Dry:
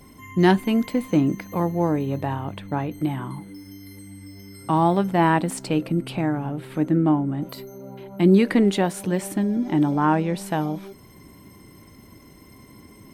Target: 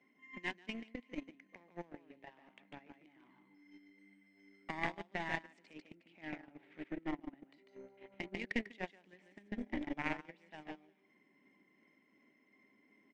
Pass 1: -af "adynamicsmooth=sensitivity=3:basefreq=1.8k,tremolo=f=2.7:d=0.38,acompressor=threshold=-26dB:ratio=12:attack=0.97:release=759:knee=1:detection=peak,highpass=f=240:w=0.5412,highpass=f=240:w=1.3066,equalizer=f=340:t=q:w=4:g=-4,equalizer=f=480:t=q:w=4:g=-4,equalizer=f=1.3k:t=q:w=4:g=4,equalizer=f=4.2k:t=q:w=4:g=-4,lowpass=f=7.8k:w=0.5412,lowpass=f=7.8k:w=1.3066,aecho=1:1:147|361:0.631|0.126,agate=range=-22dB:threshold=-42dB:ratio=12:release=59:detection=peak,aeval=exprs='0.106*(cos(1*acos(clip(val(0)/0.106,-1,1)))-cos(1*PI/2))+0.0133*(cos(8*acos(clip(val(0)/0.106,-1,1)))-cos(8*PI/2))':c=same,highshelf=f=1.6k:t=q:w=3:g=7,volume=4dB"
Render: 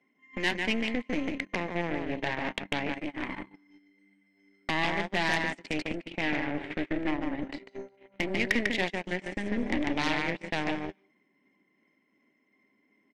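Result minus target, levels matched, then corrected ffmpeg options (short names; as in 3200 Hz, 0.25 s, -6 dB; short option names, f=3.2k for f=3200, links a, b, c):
compressor: peak gain reduction -7.5 dB
-af "adynamicsmooth=sensitivity=3:basefreq=1.8k,tremolo=f=2.7:d=0.38,acompressor=threshold=-34dB:ratio=12:attack=0.97:release=759:knee=1:detection=peak,highpass=f=240:w=0.5412,highpass=f=240:w=1.3066,equalizer=f=340:t=q:w=4:g=-4,equalizer=f=480:t=q:w=4:g=-4,equalizer=f=1.3k:t=q:w=4:g=4,equalizer=f=4.2k:t=q:w=4:g=-4,lowpass=f=7.8k:w=0.5412,lowpass=f=7.8k:w=1.3066,aecho=1:1:147|361:0.631|0.126,agate=range=-22dB:threshold=-42dB:ratio=12:release=59:detection=peak,aeval=exprs='0.106*(cos(1*acos(clip(val(0)/0.106,-1,1)))-cos(1*PI/2))+0.0133*(cos(8*acos(clip(val(0)/0.106,-1,1)))-cos(8*PI/2))':c=same,highshelf=f=1.6k:t=q:w=3:g=7,volume=4dB"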